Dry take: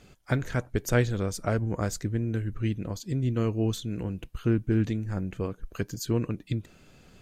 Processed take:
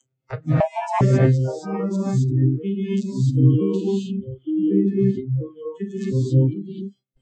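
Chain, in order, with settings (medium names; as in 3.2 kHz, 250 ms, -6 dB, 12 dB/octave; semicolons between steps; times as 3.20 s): vocoder on a broken chord minor triad, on C3, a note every 327 ms; gated-style reverb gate 290 ms rising, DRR -7 dB; gate with hold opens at -43 dBFS; upward compressor, threshold -32 dBFS; spectral noise reduction 30 dB; 0.60–1.01 s: frequency shift +490 Hz; 2.28–3.63 s: treble shelf 2.9 kHz +9.5 dB; 4.50–4.99 s: tape noise reduction on one side only decoder only; trim +4.5 dB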